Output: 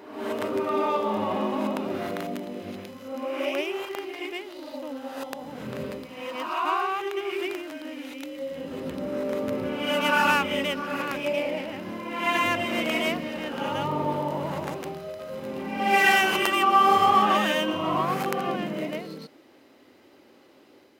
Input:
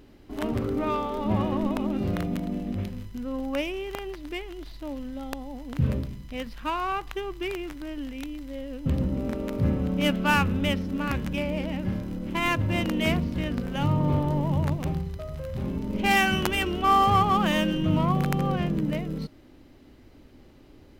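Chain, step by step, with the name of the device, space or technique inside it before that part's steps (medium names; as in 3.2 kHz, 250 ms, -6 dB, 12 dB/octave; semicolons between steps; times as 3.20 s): ghost voice (reverse; reverberation RT60 1.0 s, pre-delay 98 ms, DRR -1.5 dB; reverse; high-pass 350 Hz 12 dB/octave)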